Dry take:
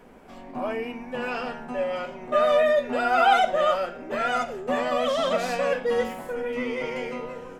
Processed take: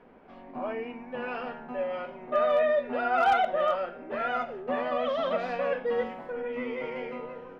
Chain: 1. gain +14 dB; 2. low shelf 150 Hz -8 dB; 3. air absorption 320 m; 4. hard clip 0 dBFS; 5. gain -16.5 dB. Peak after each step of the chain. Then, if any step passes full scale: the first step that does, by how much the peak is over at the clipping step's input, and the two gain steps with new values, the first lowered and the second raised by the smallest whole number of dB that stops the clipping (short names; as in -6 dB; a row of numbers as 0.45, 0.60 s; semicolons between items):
+6.5, +5.5, +4.0, 0.0, -16.5 dBFS; step 1, 4.0 dB; step 1 +10 dB, step 5 -12.5 dB